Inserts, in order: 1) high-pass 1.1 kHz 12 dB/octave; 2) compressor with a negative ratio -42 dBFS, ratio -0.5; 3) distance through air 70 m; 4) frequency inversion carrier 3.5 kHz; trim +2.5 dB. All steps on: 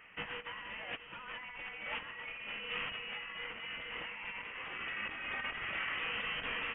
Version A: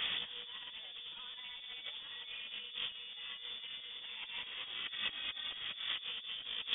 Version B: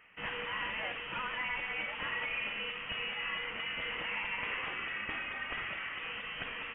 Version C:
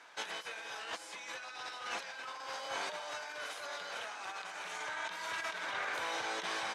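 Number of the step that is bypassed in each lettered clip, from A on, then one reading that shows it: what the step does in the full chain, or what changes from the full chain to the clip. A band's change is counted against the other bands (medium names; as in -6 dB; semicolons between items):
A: 1, 2 kHz band +3.0 dB; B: 2, crest factor change -3.0 dB; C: 4, 125 Hz band -11.0 dB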